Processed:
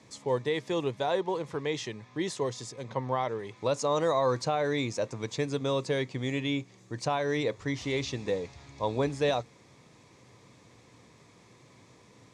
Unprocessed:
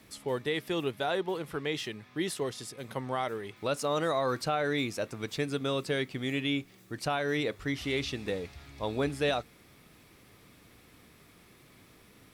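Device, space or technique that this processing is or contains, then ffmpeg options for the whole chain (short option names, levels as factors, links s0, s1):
car door speaker: -filter_complex "[0:a]highpass=83,equalizer=f=120:t=q:w=4:g=7,equalizer=f=510:t=q:w=4:g=5,equalizer=f=980:t=q:w=4:g=8,equalizer=f=1400:t=q:w=4:g=-7,equalizer=f=2900:t=q:w=4:g=-5,equalizer=f=6600:t=q:w=4:g=7,lowpass=f=8000:w=0.5412,lowpass=f=8000:w=1.3066,asettb=1/sr,asplit=3[s0][s1][s2];[s0]atrim=end=2.834[s3];[s1]atrim=start=2.83:end=3.39,asetpts=PTS-STARTPTS,afade=t=in:d=0.004:c=qsin,afade=t=out:st=0.556:d=0.004:c=qsin,lowpass=5400[s4];[s2]atrim=start=3.386[s5];[s3][s4]acrossfade=d=0.004:c1=hsin:c2=qsin[s6];[s6][s5]acrossfade=d=0.004:c1=qsin:c2=hsin"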